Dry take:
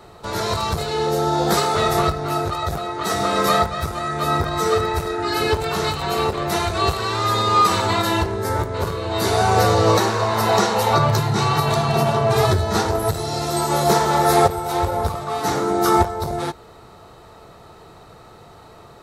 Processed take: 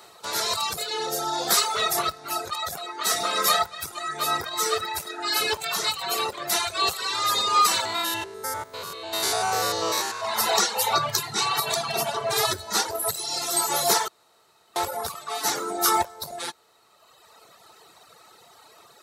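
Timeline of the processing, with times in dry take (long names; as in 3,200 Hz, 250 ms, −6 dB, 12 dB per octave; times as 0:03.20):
0:07.85–0:10.25: spectrum averaged block by block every 100 ms
0:14.08–0:14.76: fill with room tone
whole clip: reverb reduction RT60 1.8 s; high-pass filter 770 Hz 6 dB per octave; high-shelf EQ 3,300 Hz +10.5 dB; level −2.5 dB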